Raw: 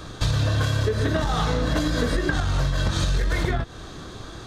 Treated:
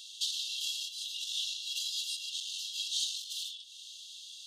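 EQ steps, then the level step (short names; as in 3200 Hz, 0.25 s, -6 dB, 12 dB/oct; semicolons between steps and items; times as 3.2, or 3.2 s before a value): brick-wall FIR high-pass 2700 Hz; 0.0 dB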